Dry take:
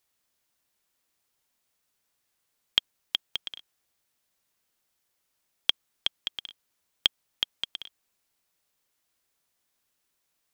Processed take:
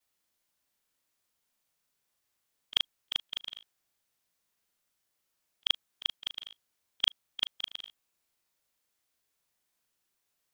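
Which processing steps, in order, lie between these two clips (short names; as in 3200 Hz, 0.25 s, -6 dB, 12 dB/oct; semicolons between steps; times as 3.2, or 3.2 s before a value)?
short-time reversal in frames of 76 ms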